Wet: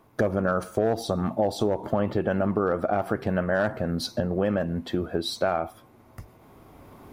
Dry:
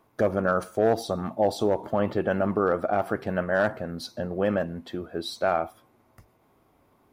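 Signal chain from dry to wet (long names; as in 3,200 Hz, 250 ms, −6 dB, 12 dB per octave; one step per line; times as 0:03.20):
camcorder AGC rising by 7.2 dB per second
low-shelf EQ 230 Hz +5.5 dB
downward compressor 3 to 1, threshold −25 dBFS, peak gain reduction 7.5 dB
level +3.5 dB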